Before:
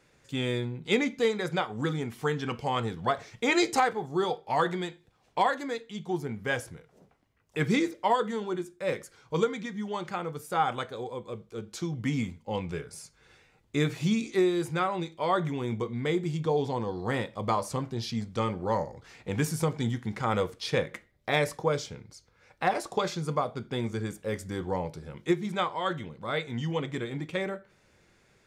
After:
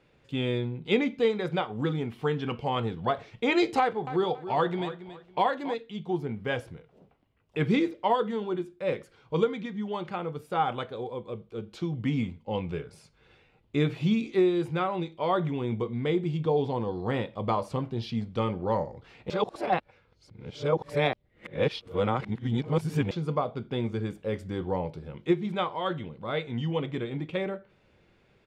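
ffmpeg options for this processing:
-filter_complex "[0:a]asettb=1/sr,asplit=3[s0][s1][s2];[s0]atrim=end=3.794[s3];[s1]atrim=start=3.79:end=5.74,asetpts=PTS-STARTPTS,afade=t=in:d=0.004:c=qsin,afade=t=out:st=1.946:d=0.004:c=qsin,aecho=1:1:278|556|834:0.224|0.056|0.014,atrim=end_sample=85995[s4];[s2]atrim=start=5.736[s5];[s3][s4]acrossfade=d=0.004:c1=hsin:c2=qsin[s6];[s6][s5]acrossfade=d=0.004:c1=qsin:c2=hsin,asplit=3[s7][s8][s9];[s7]atrim=end=19.302[s10];[s8]atrim=start=19.298:end=23.112,asetpts=PTS-STARTPTS,areverse[s11];[s9]atrim=start=23.108[s12];[s10][s11]acrossfade=d=0.004:c1=hsin:c2=hsin[s13];[s13][s12]acrossfade=d=0.004:c1=hsin:c2=hsin,firequalizer=gain_entry='entry(500,0);entry(1800,-6);entry(2800,0);entry(6300,-16)':delay=0.05:min_phase=1,volume=1.19"

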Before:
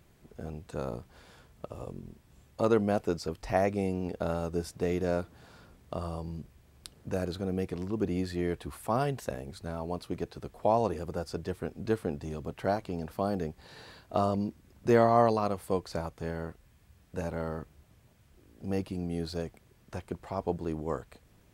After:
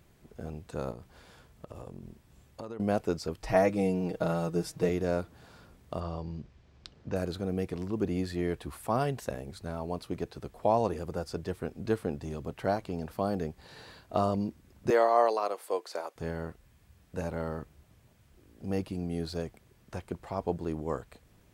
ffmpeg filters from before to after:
-filter_complex "[0:a]asettb=1/sr,asplit=3[s0][s1][s2];[s0]atrim=end=0.914[s3];[s1]atrim=start=0.91:end=2.8,asetpts=PTS-STARTPTS,afade=t=in:d=0.004:c=qsin,afade=t=out:st=1.886:d=0.004:c=qsin,acompressor=threshold=0.0126:ratio=6:attack=3.2:release=140:knee=1:detection=peak[s4];[s2]atrim=start=2.796[s5];[s3][s4]acrossfade=d=0.004:c1=hsin:c2=qsin[s6];[s6][s5]acrossfade=d=0.004:c1=qsin:c2=hsin,asettb=1/sr,asplit=3[s7][s8][s9];[s7]atrim=end=3.414[s10];[s8]atrim=start=3.41:end=4.89,asetpts=PTS-STARTPTS,afade=t=in:d=0.004:c=qsin,afade=t=out:st=1.476:d=0.004:c=qsin,aecho=1:1:6.3:0.83,atrim=end_sample=65268[s11];[s9]atrim=start=4.886[s12];[s10][s11]acrossfade=d=0.004:c1=hsin:c2=qsin[s13];[s13][s12]acrossfade=d=0.004:c1=qsin:c2=hsin,asettb=1/sr,asplit=3[s14][s15][s16];[s14]atrim=end=6.004[s17];[s15]atrim=start=6:end=7.16,asetpts=PTS-STARTPTS,afade=t=in:d=0.004:c=qsin,afade=t=out:st=1.156:d=0.004:c=qsin,lowpass=f=5900:w=0.5412,lowpass=f=5900:w=1.3066[s18];[s16]atrim=start=7.156[s19];[s17][s18]acrossfade=d=0.004:c1=hsin:c2=qsin[s20];[s20][s19]acrossfade=d=0.004:c1=qsin:c2=hsin,asettb=1/sr,asplit=3[s21][s22][s23];[s21]atrim=end=14.904[s24];[s22]atrim=start=14.9:end=16.16,asetpts=PTS-STARTPTS,afade=t=in:d=0.004:c=qsin,afade=t=out:st=1.256:d=0.004:c=qsin,highpass=f=380:w=0.5412,highpass=f=380:w=1.3066[s25];[s23]atrim=start=16.156[s26];[s24][s25]acrossfade=d=0.004:c1=hsin:c2=qsin[s27];[s27][s26]acrossfade=d=0.004:c1=qsin:c2=hsin"

